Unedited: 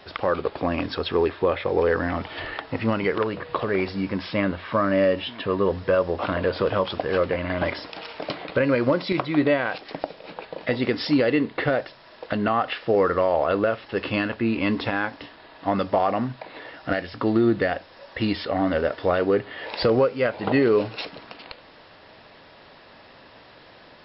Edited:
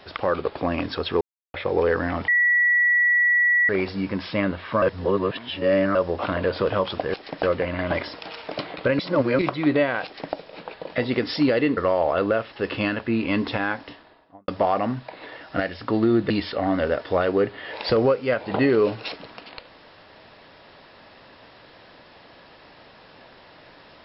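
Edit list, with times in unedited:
1.21–1.54 mute
2.28–3.69 bleep 1940 Hz -15.5 dBFS
4.82–5.95 reverse
8.7–9.1 reverse
9.76–10.05 copy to 7.14
11.48–13.1 cut
15.14–15.81 studio fade out
17.63–18.23 cut

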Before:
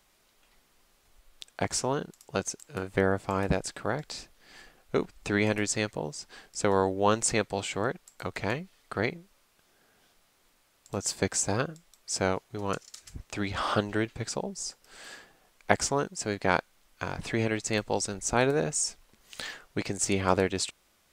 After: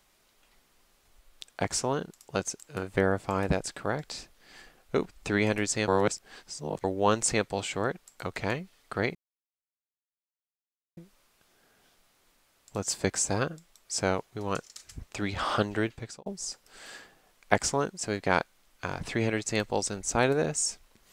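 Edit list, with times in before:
5.88–6.84 reverse
9.15 insert silence 1.82 s
14.04–14.44 fade out

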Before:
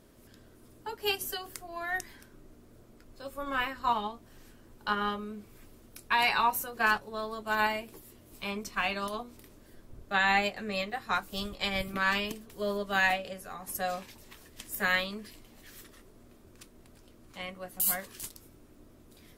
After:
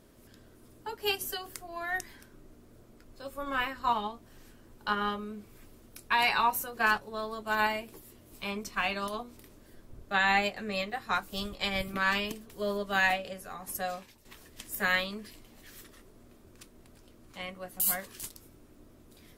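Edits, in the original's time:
13.72–14.25 fade out, to -11 dB

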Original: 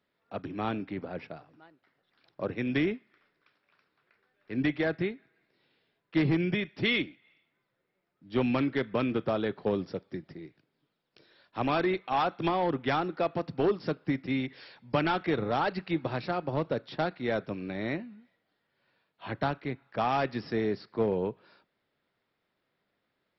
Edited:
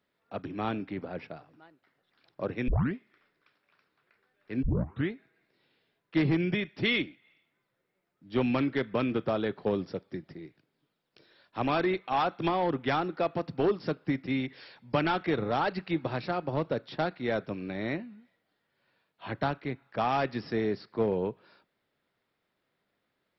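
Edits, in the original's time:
2.68 tape start 0.27 s
4.63 tape start 0.48 s

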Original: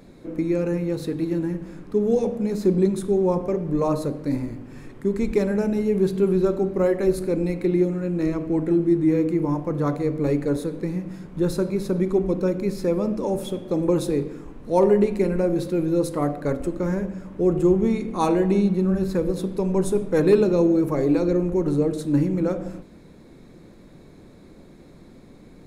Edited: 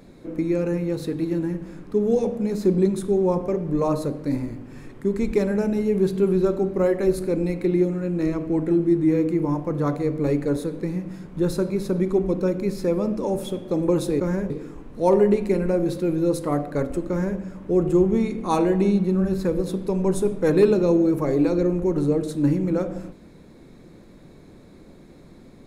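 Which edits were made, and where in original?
16.79–17.09 copy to 14.2

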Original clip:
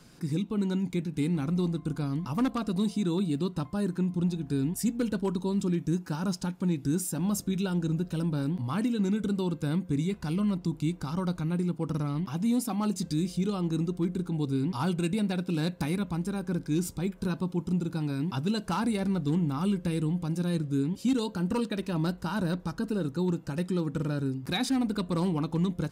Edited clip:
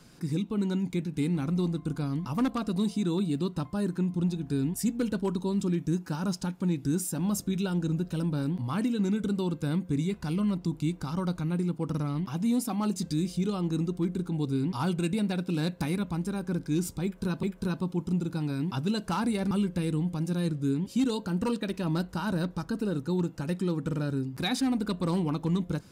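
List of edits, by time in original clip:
17.03–17.43 loop, 2 plays
19.11–19.6 cut

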